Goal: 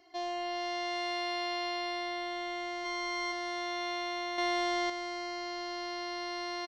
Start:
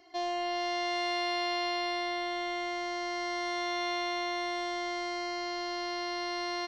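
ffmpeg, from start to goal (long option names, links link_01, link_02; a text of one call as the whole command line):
ffmpeg -i in.wav -filter_complex "[0:a]asplit=3[link_01][link_02][link_03];[link_01]afade=type=out:start_time=2.84:duration=0.02[link_04];[link_02]aecho=1:1:4.8:0.97,afade=type=in:start_time=2.84:duration=0.02,afade=type=out:start_time=3.31:duration=0.02[link_05];[link_03]afade=type=in:start_time=3.31:duration=0.02[link_06];[link_04][link_05][link_06]amix=inputs=3:normalize=0,asettb=1/sr,asplit=3[link_07][link_08][link_09];[link_07]atrim=end=4.384[link_10];[link_08]atrim=start=4.38:end=4.9,asetpts=PTS-STARTPTS,afade=type=in:duration=0.004:curve=qsin,afade=type=out:start_time=0.516:duration=0.004:curve=qsin,acontrast=60[link_11];[link_09]atrim=start=4.896[link_12];[link_10][link_11]acrossfade=duration=0.004:curve1=hsin:curve2=qsin[link_13];[link_13][link_12]acrossfade=duration=0.004:curve1=qsin:curve2=hsin,volume=-3dB" out.wav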